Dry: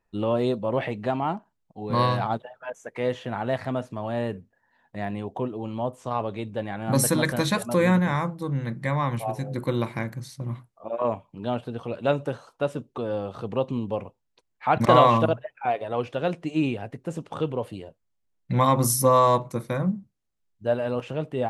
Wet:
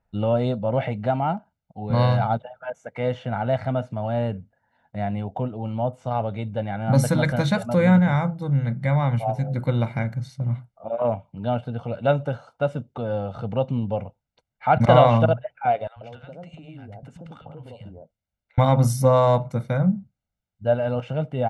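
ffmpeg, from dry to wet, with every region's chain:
-filter_complex "[0:a]asettb=1/sr,asplit=3[s0][s1][s2];[s0]atrim=end=15.874[s3];[s1]atrim=start=15.87:end=18.58,asetpts=PTS-STARTPTS,afade=t=in:d=0.004:c=qsin,afade=t=out:st=2.706:d=0.004:c=qsin,acompressor=threshold=0.0158:ratio=16:attack=3.2:release=140:knee=1:detection=peak,acrossover=split=170|920[s4][s5][s6];[s4]adelay=90[s7];[s5]adelay=140[s8];[s7][s8][s6]amix=inputs=3:normalize=0,atrim=end_sample=119511[s9];[s2]atrim=start=18.576[s10];[s3][s9]acrossfade=d=0.004:c1=hsin:c2=qsin[s11];[s11][s10]acrossfade=d=0.004:c1=qsin:c2=hsin,highpass=f=170:p=1,aemphasis=mode=reproduction:type=bsi,aecho=1:1:1.4:0.64"

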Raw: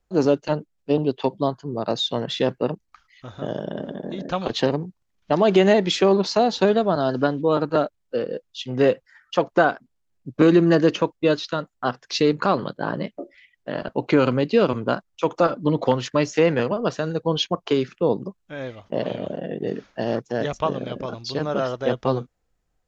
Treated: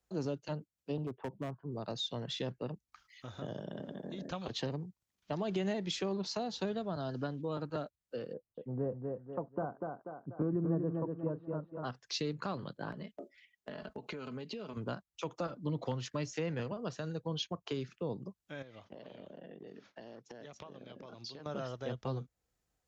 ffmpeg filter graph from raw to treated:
-filter_complex "[0:a]asettb=1/sr,asplit=3[s0][s1][s2];[s0]atrim=end=1.064[s3];[s1]atrim=start=1.06:end=1.72,asetpts=PTS-STARTPTS,afade=t=in:d=0.004:c=qsin,afade=t=out:st=0.656:d=0.004:c=qsin,lowpass=f=1700:w=0.5412,lowpass=f=1700:w=1.3066,volume=7.5,asoftclip=hard,volume=0.133[s4];[s2]atrim=start=1.716[s5];[s3][s4]acrossfade=d=0.004:c1=hsin:c2=qsin[s6];[s6][s5]acrossfade=d=0.004:c1=qsin:c2=hsin,asettb=1/sr,asplit=3[s7][s8][s9];[s7]atrim=end=8.334[s10];[s8]atrim=start=8.33:end=11.84,asetpts=PTS-STARTPTS,afade=t=in:d=0.004:c=qsin,afade=t=out:st=3.506:d=0.004:c=qsin,lowpass=f=1100:w=0.5412,lowpass=f=1100:w=1.3066,aecho=1:1:243|486|729|972:0.531|0.17|0.0544|0.0174,atrim=end_sample=154791[s11];[s9]atrim=start=11.836[s12];[s10][s11]acrossfade=d=0.004:c1=hsin:c2=qsin[s13];[s13][s12]acrossfade=d=0.004:c1=qsin:c2=hsin,asettb=1/sr,asplit=3[s14][s15][s16];[s14]atrim=end=12.924[s17];[s15]atrim=start=12.92:end=14.77,asetpts=PTS-STARTPTS,afade=t=in:d=0.004:c=qsin,afade=t=out:st=1.846:d=0.004:c=qsin,agate=range=0.501:threshold=0.00562:ratio=16:release=100:detection=peak,aecho=1:1:4.7:0.52,atrim=end_sample=81585,acompressor=threshold=0.0398:ratio=6:attack=3.2:release=140:knee=1:detection=peak[s18];[s16]atrim=start=14.766[s19];[s17][s18]acrossfade=d=0.004:c1=hsin:c2=qsin[s20];[s20][s19]acrossfade=d=0.004:c1=qsin:c2=hsin,asettb=1/sr,asplit=3[s21][s22][s23];[s21]atrim=end=18.624[s24];[s22]atrim=start=18.62:end=21.46,asetpts=PTS-STARTPTS,afade=t=in:d=0.004:c=qsin,afade=t=out:st=2.836:d=0.004:c=qsin,agate=range=0.0224:threshold=0.00224:ratio=3:release=100:detection=peak,highpass=120,lowpass=5700,acompressor=threshold=0.0126:ratio=8:attack=3.2:release=140:knee=1:detection=peak[s25];[s23]atrim=start=21.456[s26];[s24][s25]acrossfade=d=0.004:c1=hsin:c2=qsin[s27];[s27][s26]acrossfade=d=0.004:c1=qsin:c2=hsin,acrossover=split=150[s28][s29];[s29]acompressor=threshold=0.0112:ratio=2[s30];[s28][s30]amix=inputs=2:normalize=0,highpass=52,highshelf=f=3800:g=7.5,volume=0.447"

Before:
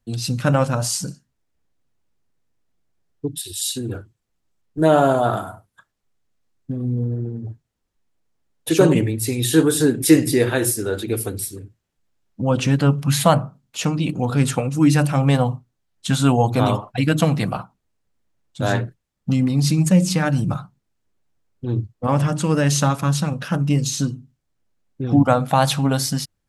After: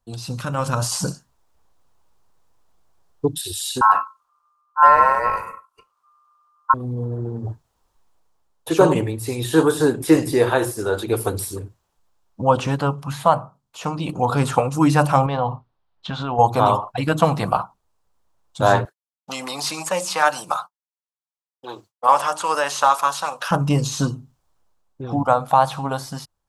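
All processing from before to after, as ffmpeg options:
-filter_complex "[0:a]asettb=1/sr,asplit=3[s0][s1][s2];[s0]atrim=end=0.414[s3];[s1]atrim=start=0.41:end=0.92,asetpts=PTS-STARTPTS,afade=t=in:d=0.004:c=qsin,afade=t=out:st=0.506:d=0.004:c=qsin,equalizer=f=740:w=0.97:g=-11.5,acompressor=threshold=0.0794:ratio=5:attack=3.2:release=140:knee=1:detection=peak[s4];[s2]atrim=start=0.916[s5];[s3][s4]acrossfade=d=0.004:c1=hsin:c2=qsin[s6];[s6][s5]acrossfade=d=0.004:c1=qsin:c2=hsin,asettb=1/sr,asplit=3[s7][s8][s9];[s7]atrim=end=3.814[s10];[s8]atrim=start=3.81:end=6.74,asetpts=PTS-STARTPTS,afade=t=in:d=0.004:c=qsin,afade=t=out:st=2.926:d=0.004:c=qsin,equalizer=f=150:t=o:w=0.49:g=13.5,aeval=exprs='val(0)*sin(2*PI*1200*n/s)':c=same[s11];[s9]atrim=start=6.736[s12];[s10][s11]acrossfade=d=0.004:c1=hsin:c2=qsin[s13];[s13][s12]acrossfade=d=0.004:c1=qsin:c2=hsin,asettb=1/sr,asplit=3[s14][s15][s16];[s14]atrim=end=15.264[s17];[s15]atrim=start=15.26:end=16.39,asetpts=PTS-STARTPTS,afade=t=in:d=0.004:c=qsin,afade=t=out:st=1.126:d=0.004:c=qsin,lowpass=f=4100:w=0.5412,lowpass=f=4100:w=1.3066,acompressor=threshold=0.112:ratio=12:attack=3.2:release=140:knee=1:detection=peak[s18];[s16]atrim=start=16.386[s19];[s17][s18]acrossfade=d=0.004:c1=hsin:c2=qsin[s20];[s20][s19]acrossfade=d=0.004:c1=qsin:c2=hsin,asettb=1/sr,asplit=3[s21][s22][s23];[s21]atrim=end=18.854[s24];[s22]atrim=start=18.85:end=23.51,asetpts=PTS-STARTPTS,afade=t=in:d=0.004:c=qsin,afade=t=out:st=4.656:d=0.004:c=qsin,agate=range=0.0224:threshold=0.0178:ratio=3:release=100:detection=peak,highpass=650,highshelf=f=2500:g=8[s25];[s23]atrim=start=23.506[s26];[s24][s25]acrossfade=d=0.004:c1=hsin:c2=qsin[s27];[s27][s26]acrossfade=d=0.004:c1=qsin:c2=hsin,acrossover=split=2800[s28][s29];[s29]acompressor=threshold=0.0224:ratio=4:attack=1:release=60[s30];[s28][s30]amix=inputs=2:normalize=0,equalizer=f=125:t=o:w=1:g=-5,equalizer=f=250:t=o:w=1:g=-7,equalizer=f=1000:t=o:w=1:g=10,equalizer=f=2000:t=o:w=1:g=-7,dynaudnorm=f=170:g=7:m=3.76,volume=0.891"

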